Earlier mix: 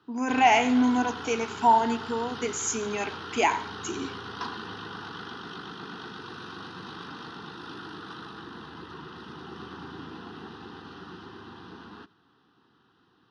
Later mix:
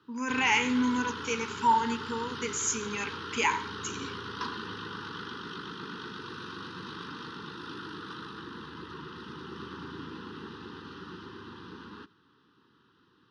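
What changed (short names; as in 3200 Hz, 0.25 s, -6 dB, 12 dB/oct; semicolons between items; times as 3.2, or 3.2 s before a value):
speech: add bell 340 Hz -14.5 dB 0.6 oct; master: add Butterworth band-stop 690 Hz, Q 1.8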